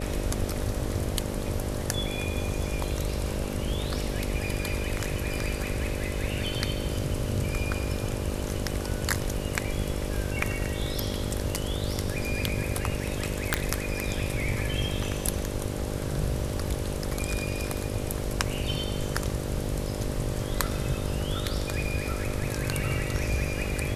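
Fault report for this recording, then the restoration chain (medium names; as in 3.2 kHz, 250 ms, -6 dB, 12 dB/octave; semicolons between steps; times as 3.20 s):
buzz 50 Hz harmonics 12 -34 dBFS
13.54 s: pop -5 dBFS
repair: de-click; de-hum 50 Hz, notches 12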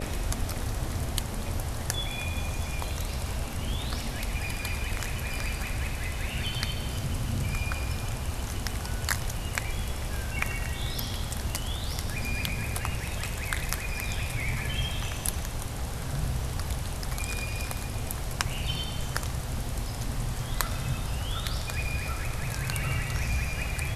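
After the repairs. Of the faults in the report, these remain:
nothing left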